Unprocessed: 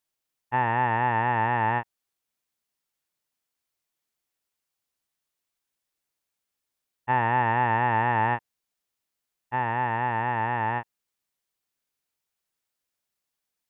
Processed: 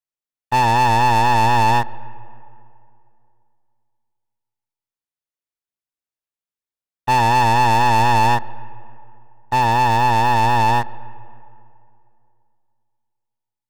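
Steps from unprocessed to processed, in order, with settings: high shelf 2200 Hz -4 dB; sample leveller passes 5; on a send: reverb RT60 2.6 s, pre-delay 80 ms, DRR 20.5 dB

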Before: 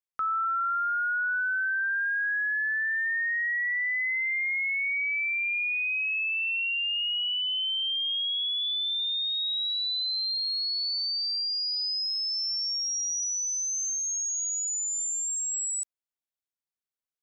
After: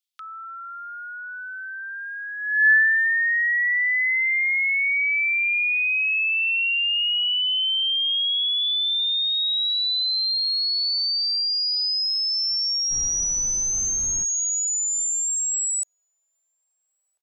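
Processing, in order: high-pass sweep 3400 Hz -> 600 Hz, 2.37–3.17; 12.9–14.23 added noise brown -42 dBFS; outdoor echo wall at 230 m, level -27 dB; gain +6 dB

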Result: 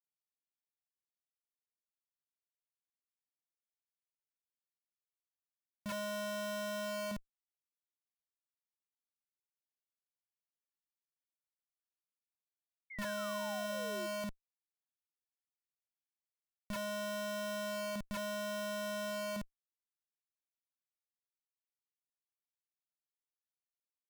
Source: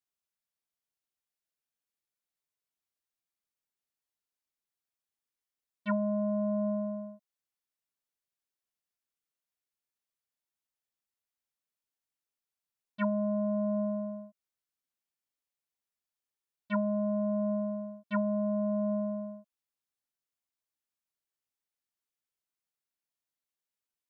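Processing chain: limiter -28.5 dBFS, peak gain reduction 8 dB; overdrive pedal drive 19 dB, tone 1500 Hz, clips at -28.5 dBFS; Schmitt trigger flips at -42.5 dBFS; painted sound fall, 12.9–14.07, 330–2200 Hz -50 dBFS; gain +1.5 dB

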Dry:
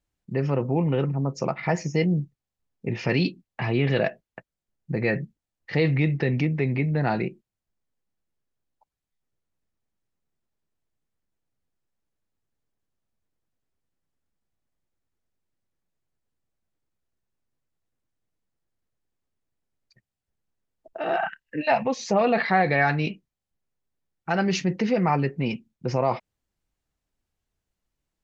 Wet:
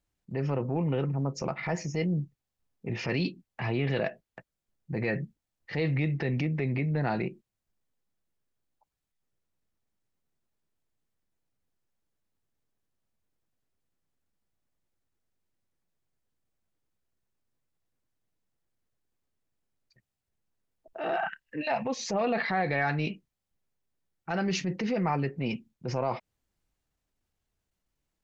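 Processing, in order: compressor 2:1, threshold -28 dBFS, peak gain reduction 7.5 dB; transient shaper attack -6 dB, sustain +1 dB

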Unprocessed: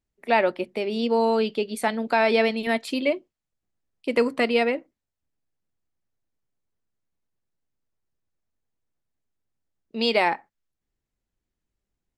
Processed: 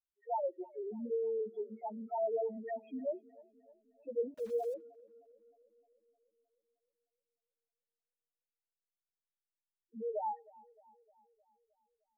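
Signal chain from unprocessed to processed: LPF 2700 Hz 24 dB/oct; low shelf 170 Hz -12 dB; loudest bins only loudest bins 1; 4.34–4.74 sample gate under -47 dBFS; tape echo 0.308 s, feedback 62%, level -21.5 dB, low-pass 1700 Hz; gain -5.5 dB

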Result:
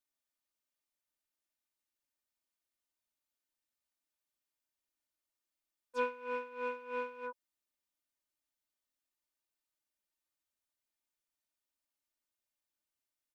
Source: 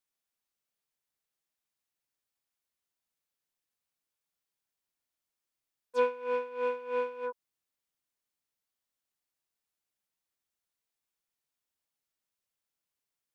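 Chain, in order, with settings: comb 3.3 ms, depth 78%; gain -5.5 dB

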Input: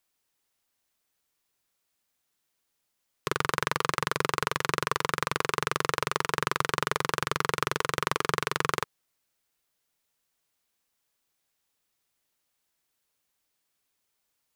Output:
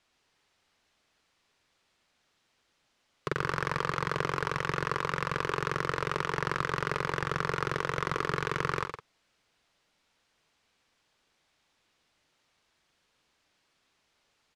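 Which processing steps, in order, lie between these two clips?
G.711 law mismatch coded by mu; LPF 4500 Hz 12 dB/oct; soft clip -16 dBFS, distortion -9 dB; tapped delay 45/113/161 ms -13/-7.5/-15 dB; Doppler distortion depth 0.17 ms

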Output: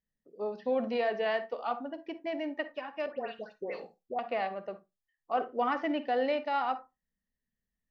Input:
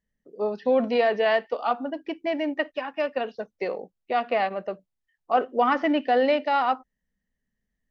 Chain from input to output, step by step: 3.06–4.19 dispersion highs, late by 0.13 s, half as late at 1600 Hz; reverb RT60 0.20 s, pre-delay 42 ms, DRR 12.5 dB; gain -8.5 dB

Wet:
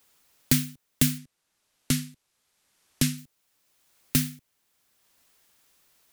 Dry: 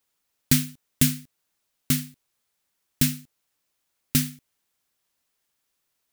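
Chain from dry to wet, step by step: 1.18–3.18 Bessel low-pass 11000 Hz, order 6; three-band squash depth 40%

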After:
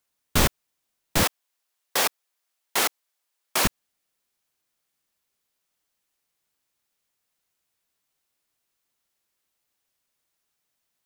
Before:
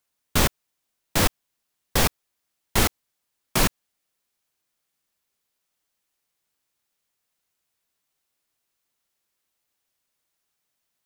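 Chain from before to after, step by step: 1.23–3.65 HPF 490 Hz 12 dB/oct

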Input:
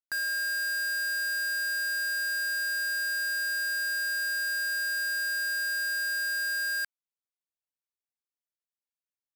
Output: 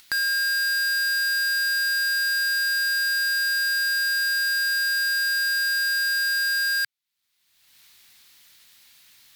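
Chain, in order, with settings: ten-band EQ 125 Hz +4 dB, 500 Hz -7 dB, 2000 Hz +7 dB, 4000 Hz +11 dB, 16000 Hz +7 dB; upward compressor, threshold -27 dBFS

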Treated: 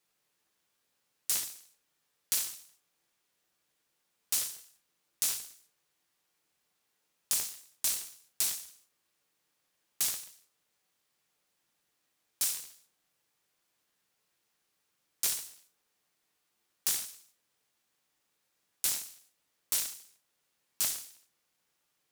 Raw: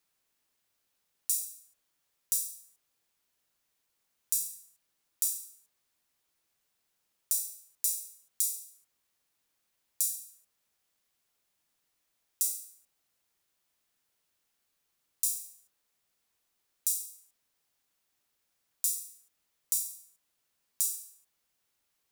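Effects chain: HPF 110 Hz; reverb RT60 0.45 s, pre-delay 6 ms, DRR 1.5 dB; noise-modulated delay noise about 1300 Hz, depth 0.033 ms

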